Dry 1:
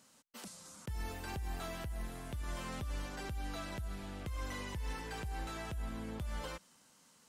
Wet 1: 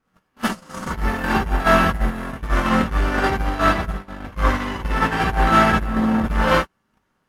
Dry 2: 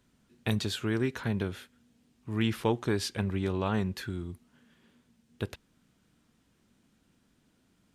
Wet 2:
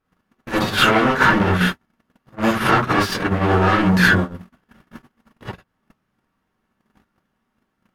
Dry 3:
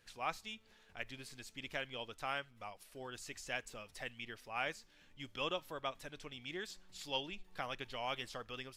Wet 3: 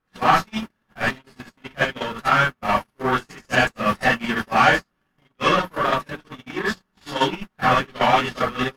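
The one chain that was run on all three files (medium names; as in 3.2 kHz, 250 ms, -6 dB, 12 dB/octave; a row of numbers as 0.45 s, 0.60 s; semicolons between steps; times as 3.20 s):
single-diode clipper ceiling -21 dBFS; hum notches 60/120/180 Hz; added noise pink -61 dBFS; sine folder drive 12 dB, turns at -20.5 dBFS; ten-band graphic EQ 125 Hz +5 dB, 250 Hz +8 dB, 2 kHz -3 dB, 4 kHz -5 dB, 8 kHz -11 dB; peak limiter -18.5 dBFS; compression 16:1, threshold -30 dBFS; waveshaping leveller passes 3; low-pass 12 kHz 12 dB/octave; peaking EQ 1.5 kHz +9.5 dB 1.9 oct; gated-style reverb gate 90 ms rising, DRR -5 dB; gate -17 dBFS, range -49 dB; peak normalisation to -1.5 dBFS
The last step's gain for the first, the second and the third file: +4.0 dB, +1.5 dB, +0.5 dB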